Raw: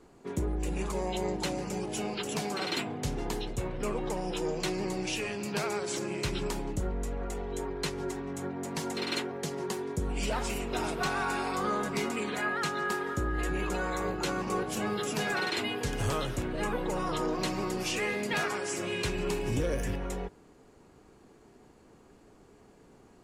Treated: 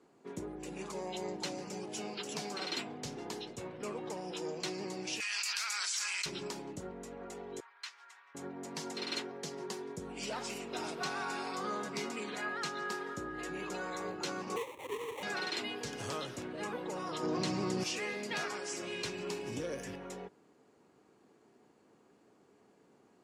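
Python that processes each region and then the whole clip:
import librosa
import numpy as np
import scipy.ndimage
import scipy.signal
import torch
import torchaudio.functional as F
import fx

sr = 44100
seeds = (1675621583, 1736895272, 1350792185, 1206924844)

y = fx.chain(x, sr, fx.highpass(hz=1300.0, slope=24),
    fx.high_shelf(hz=5300.0, db=5.5),
    fx.env_flatten(amount_pct=100), at=(5.2, 6.26))
y = fx.chain(y, sr, fx.highpass(hz=1200.0, slope=24),
    fx.high_shelf(hz=4800.0, db=-11.5), at=(7.6, 8.35))
y = fx.chain(y, sr, fx.sine_speech(),
    fx.sample_hold(seeds[0], rate_hz=1500.0, jitter_pct=20),
    fx.fixed_phaser(hz=1000.0, stages=8), at=(14.56, 15.23))
y = fx.chain(y, sr, fx.lowpass(hz=11000.0, slope=24),
    fx.peak_eq(hz=100.0, db=11.5, octaves=2.4),
    fx.env_flatten(amount_pct=100), at=(17.23, 17.84))
y = fx.dynamic_eq(y, sr, hz=5300.0, q=1.3, threshold_db=-52.0, ratio=4.0, max_db=7)
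y = scipy.signal.sosfilt(scipy.signal.butter(2, 170.0, 'highpass', fs=sr, output='sos'), y)
y = fx.high_shelf(y, sr, hz=12000.0, db=-9.5)
y = F.gain(torch.from_numpy(y), -7.0).numpy()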